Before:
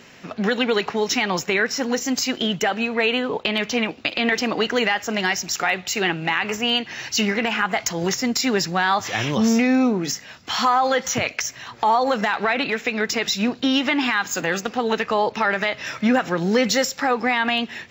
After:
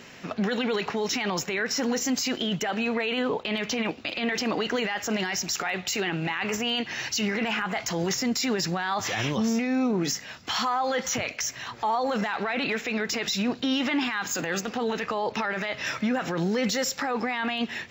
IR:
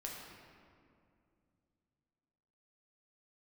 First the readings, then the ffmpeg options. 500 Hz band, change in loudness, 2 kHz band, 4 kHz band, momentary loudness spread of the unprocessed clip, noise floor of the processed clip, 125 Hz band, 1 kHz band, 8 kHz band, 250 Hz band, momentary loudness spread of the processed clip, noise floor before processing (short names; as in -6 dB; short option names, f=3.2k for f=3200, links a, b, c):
-6.0 dB, -6.0 dB, -7.0 dB, -5.5 dB, 5 LU, -44 dBFS, -3.0 dB, -7.5 dB, -3.5 dB, -5.0 dB, 3 LU, -44 dBFS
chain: -af "alimiter=limit=-18.5dB:level=0:latency=1:release=16"